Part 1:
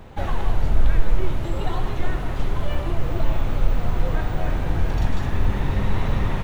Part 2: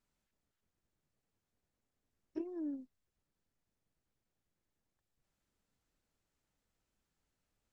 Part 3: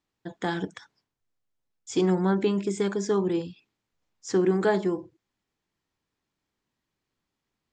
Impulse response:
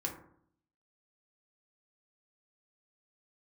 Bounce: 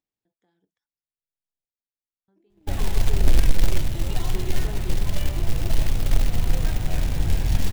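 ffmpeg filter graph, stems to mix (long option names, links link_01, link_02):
-filter_complex "[0:a]equalizer=frequency=440:width=0.74:gain=-6.5,acrusher=bits=4:mode=log:mix=0:aa=0.000001,adelay=2500,volume=0.5dB[link_01];[1:a]asoftclip=type=hard:threshold=-32dB,volume=2dB[link_02];[2:a]acompressor=mode=upward:threshold=-32dB:ratio=2.5,volume=-14.5dB,asplit=3[link_03][link_04][link_05];[link_03]atrim=end=1.65,asetpts=PTS-STARTPTS,afade=type=out:start_time=1.646:duration=0.004:curve=hsin[link_06];[link_04]atrim=start=1.65:end=2.28,asetpts=PTS-STARTPTS,volume=0[link_07];[link_05]atrim=start=2.28,asetpts=PTS-STARTPTS,afade=type=in:duration=0.004:curve=hsin[link_08];[link_06][link_07][link_08]concat=n=3:v=0:a=1[link_09];[link_02][link_09]amix=inputs=2:normalize=0,equalizer=frequency=890:width=0.42:gain=4.5,alimiter=level_in=4.5dB:limit=-24dB:level=0:latency=1:release=245,volume=-4.5dB,volume=0dB[link_10];[link_01][link_10]amix=inputs=2:normalize=0,agate=range=-27dB:threshold=-31dB:ratio=16:detection=peak,equalizer=frequency=1200:width=1.1:gain=-9"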